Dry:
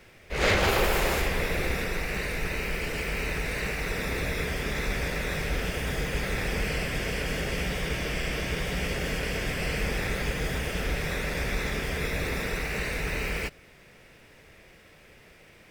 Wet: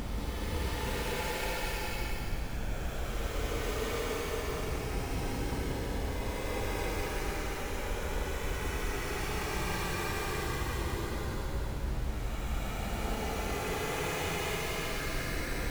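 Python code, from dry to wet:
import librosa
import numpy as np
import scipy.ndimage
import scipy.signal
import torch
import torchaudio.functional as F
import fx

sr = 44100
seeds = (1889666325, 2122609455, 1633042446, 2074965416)

p1 = fx.lower_of_two(x, sr, delay_ms=2.4)
p2 = fx.over_compress(p1, sr, threshold_db=-34.0, ratio=-1.0)
p3 = fx.schmitt(p2, sr, flips_db=-34.0)
p4 = fx.vibrato(p3, sr, rate_hz=2.9, depth_cents=97.0)
p5 = fx.paulstretch(p4, sr, seeds[0], factor=45.0, window_s=0.05, from_s=3.14)
y = p5 + fx.echo_single(p5, sr, ms=183, db=-6.0, dry=0)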